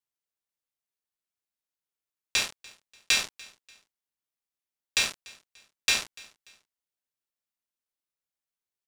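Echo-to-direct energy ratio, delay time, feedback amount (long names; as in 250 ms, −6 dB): −22.5 dB, 292 ms, 36%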